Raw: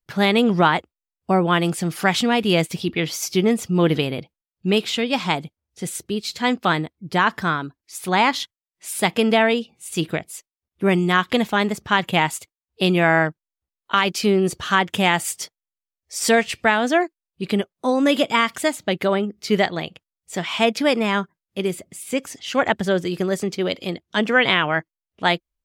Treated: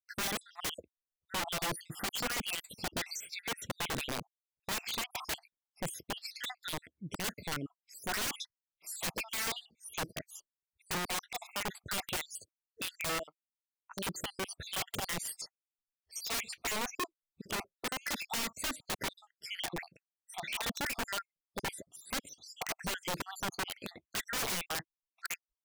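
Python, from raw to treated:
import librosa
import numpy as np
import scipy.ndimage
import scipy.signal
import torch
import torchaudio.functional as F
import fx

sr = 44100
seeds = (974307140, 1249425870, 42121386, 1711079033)

y = fx.spec_dropout(x, sr, seeds[0], share_pct=69)
y = fx.highpass(y, sr, hz=970.0, slope=12, at=(13.18, 13.94), fade=0.02)
y = (np.mod(10.0 ** (21.0 / 20.0) * y + 1.0, 2.0) - 1.0) / 10.0 ** (21.0 / 20.0)
y = F.gain(torch.from_numpy(y), -8.0).numpy()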